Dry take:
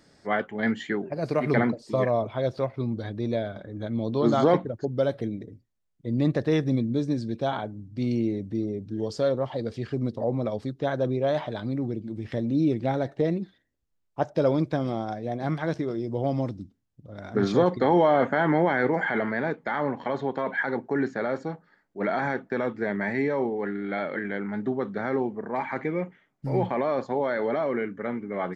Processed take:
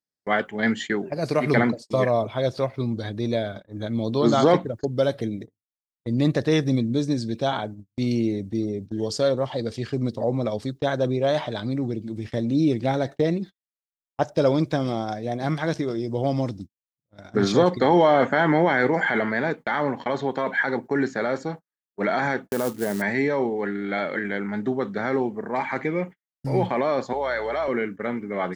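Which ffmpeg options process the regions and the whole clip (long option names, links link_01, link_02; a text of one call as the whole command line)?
ffmpeg -i in.wav -filter_complex "[0:a]asettb=1/sr,asplit=3[link_01][link_02][link_03];[link_01]atrim=end=22.484[link_04];[link_02]atrim=start=22.48:end=23.02,asetpts=PTS-STARTPTS,afade=type=in:duration=0.004:curve=qsin,afade=type=out:start_time=0.536:duration=0.004:curve=qsin,lowpass=1200,acrusher=bits=5:mode=log:mix=0:aa=0.000001[link_05];[link_03]atrim=start=23.016[link_06];[link_04][link_05]acrossfade=duration=0.004:curve1=hsin:curve2=qsin[link_07];[link_07][link_06]acrossfade=duration=0.004:curve1=qsin:curve2=hsin,asettb=1/sr,asplit=3[link_08][link_09][link_10];[link_08]atrim=end=27.134[link_11];[link_09]atrim=start=27.13:end=27.68,asetpts=PTS-STARTPTS,afade=type=in:duration=0.004:curve=qsin,afade=type=out:start_time=0.546:duration=0.004:curve=qsin,highpass=540,aeval=exprs='val(0)+0.00355*(sin(2*PI*60*n/s)+sin(2*PI*2*60*n/s)/2+sin(2*PI*3*60*n/s)/3+sin(2*PI*4*60*n/s)/4+sin(2*PI*5*60*n/s)/5)':channel_layout=same[link_12];[link_10]atrim=start=27.676[link_13];[link_11][link_12]acrossfade=duration=0.004:curve1=hsin:curve2=qsin[link_14];[link_14][link_13]acrossfade=duration=0.004:curve1=qsin:curve2=hsin,agate=range=-43dB:threshold=-37dB:ratio=16:detection=peak,highshelf=frequency=3700:gain=11.5,volume=2.5dB" out.wav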